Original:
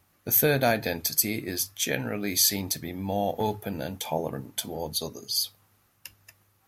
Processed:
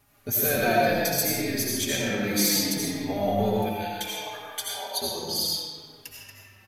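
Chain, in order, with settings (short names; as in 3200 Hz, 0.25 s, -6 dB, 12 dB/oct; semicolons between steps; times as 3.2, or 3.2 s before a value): in parallel at -2 dB: compressor, threshold -37 dBFS, peak gain reduction 18 dB; 3.58–5 on the sum: resonant high-pass 2600 Hz -> 840 Hz, resonance Q 1.6; soft clip -13.5 dBFS, distortion -18 dB; reverb RT60 2.0 s, pre-delay 45 ms, DRR -4.5 dB; endless flanger 4.4 ms -0.66 Hz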